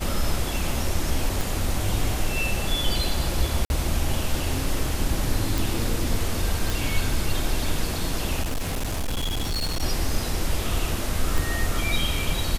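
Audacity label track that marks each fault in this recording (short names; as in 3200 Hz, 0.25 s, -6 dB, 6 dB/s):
1.410000	1.410000	pop
3.650000	3.700000	gap 51 ms
5.580000	5.580000	pop
6.700000	6.700000	pop
8.430000	9.830000	clipped -22.5 dBFS
11.380000	11.380000	pop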